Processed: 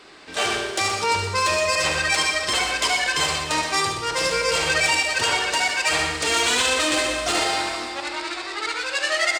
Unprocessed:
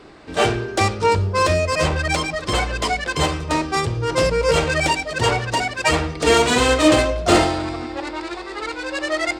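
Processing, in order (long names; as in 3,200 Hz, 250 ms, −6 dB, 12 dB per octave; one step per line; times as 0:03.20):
low-shelf EQ 270 Hz −9 dB
mains-hum notches 60/120 Hz
four-comb reverb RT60 1.5 s, combs from 29 ms, DRR 8.5 dB
brickwall limiter −13 dBFS, peak gain reduction 9.5 dB
tilt shelving filter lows −5.5 dB, about 1,300 Hz
multi-tap delay 72/123/461 ms −8/−9/−19.5 dB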